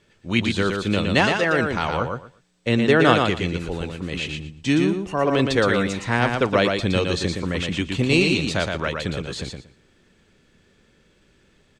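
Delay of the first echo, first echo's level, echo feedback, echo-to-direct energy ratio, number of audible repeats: 117 ms, -4.5 dB, 18%, -4.5 dB, 3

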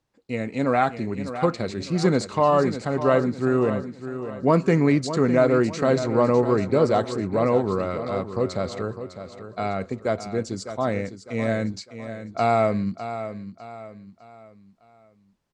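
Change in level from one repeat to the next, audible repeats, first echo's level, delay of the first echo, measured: -8.0 dB, 3, -11.0 dB, 604 ms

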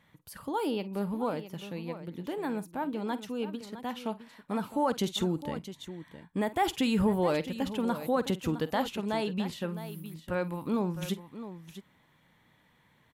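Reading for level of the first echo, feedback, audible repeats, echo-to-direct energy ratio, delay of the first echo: -16.5 dB, no regular repeats, 2, -11.0 dB, 50 ms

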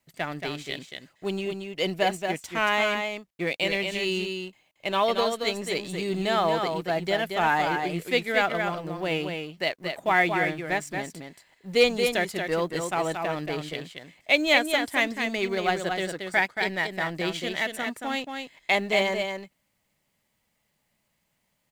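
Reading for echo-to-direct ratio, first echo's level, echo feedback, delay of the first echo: -5.5 dB, -5.5 dB, no regular repeats, 228 ms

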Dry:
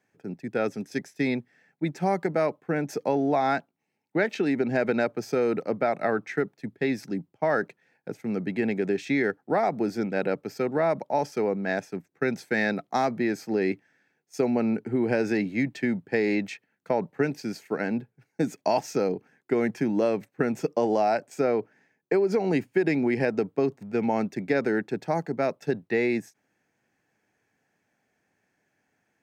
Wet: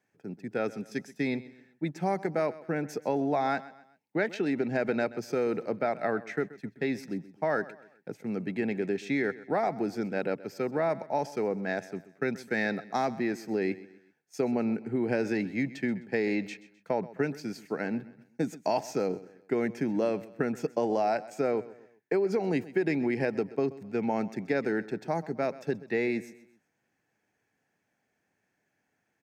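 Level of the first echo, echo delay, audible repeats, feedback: -18.0 dB, 129 ms, 3, 39%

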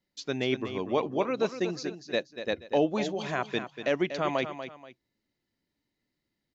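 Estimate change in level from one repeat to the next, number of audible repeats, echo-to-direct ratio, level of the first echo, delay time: -10.0 dB, 2, -9.5 dB, -10.0 dB, 240 ms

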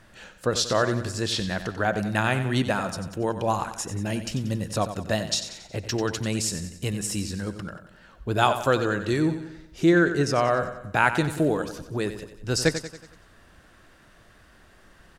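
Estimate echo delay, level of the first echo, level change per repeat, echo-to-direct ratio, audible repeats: 92 ms, -11.0 dB, -6.0 dB, -9.5 dB, 4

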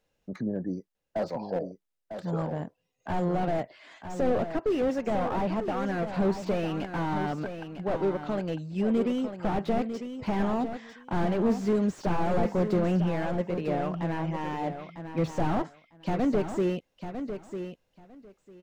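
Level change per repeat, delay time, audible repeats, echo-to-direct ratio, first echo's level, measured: -16.0 dB, 950 ms, 2, -9.0 dB, -9.0 dB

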